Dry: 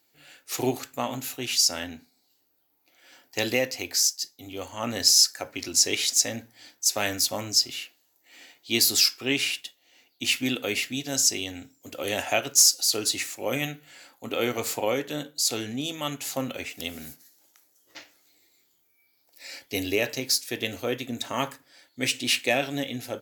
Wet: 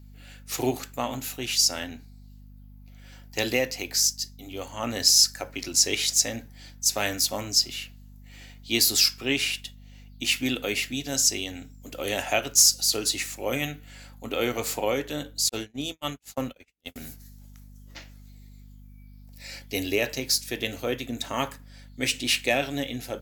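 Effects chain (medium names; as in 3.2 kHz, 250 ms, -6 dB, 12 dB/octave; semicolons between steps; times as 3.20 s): hum 50 Hz, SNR 19 dB; 15.49–16.96 s: gate -30 dBFS, range -48 dB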